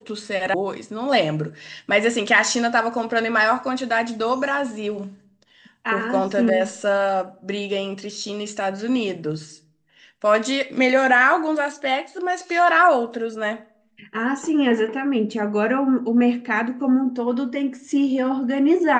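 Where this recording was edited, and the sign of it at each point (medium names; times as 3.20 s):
0.54 s: sound stops dead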